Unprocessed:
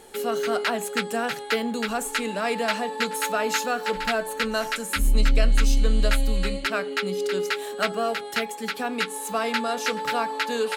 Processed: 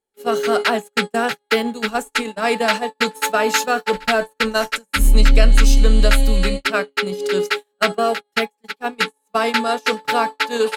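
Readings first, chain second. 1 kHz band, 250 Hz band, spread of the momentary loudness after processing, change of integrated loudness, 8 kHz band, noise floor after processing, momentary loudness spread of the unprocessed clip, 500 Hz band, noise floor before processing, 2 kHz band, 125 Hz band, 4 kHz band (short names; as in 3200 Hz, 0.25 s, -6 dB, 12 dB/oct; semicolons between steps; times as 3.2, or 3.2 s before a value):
+6.0 dB, +6.0 dB, 7 LU, +6.5 dB, +4.0 dB, -71 dBFS, 5 LU, +6.0 dB, -36 dBFS, +6.5 dB, +7.5 dB, +6.5 dB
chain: gate -26 dBFS, range -44 dB; gain +7.5 dB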